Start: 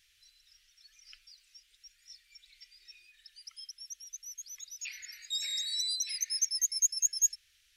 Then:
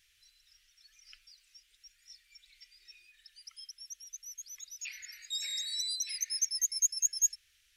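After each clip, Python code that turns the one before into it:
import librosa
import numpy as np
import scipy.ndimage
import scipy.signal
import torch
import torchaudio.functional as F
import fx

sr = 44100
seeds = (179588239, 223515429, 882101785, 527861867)

y = fx.peak_eq(x, sr, hz=4300.0, db=-2.5, octaves=0.93)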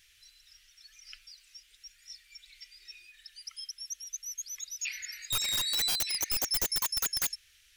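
y = (np.mod(10.0 ** (29.5 / 20.0) * x + 1.0, 2.0) - 1.0) / 10.0 ** (29.5 / 20.0)
y = F.gain(torch.from_numpy(y), 6.5).numpy()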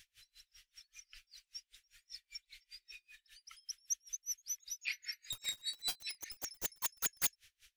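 y = fx.rider(x, sr, range_db=4, speed_s=0.5)
y = y * 10.0 ** (-34 * (0.5 - 0.5 * np.cos(2.0 * np.pi * 5.1 * np.arange(len(y)) / sr)) / 20.0)
y = F.gain(torch.from_numpy(y), -1.0).numpy()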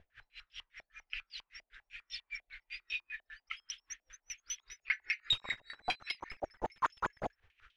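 y = fx.filter_held_lowpass(x, sr, hz=10.0, low_hz=670.0, high_hz=3100.0)
y = F.gain(torch.from_numpy(y), 9.0).numpy()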